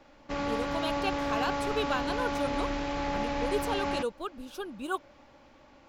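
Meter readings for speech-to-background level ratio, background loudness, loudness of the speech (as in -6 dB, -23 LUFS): -3.0 dB, -32.5 LUFS, -35.5 LUFS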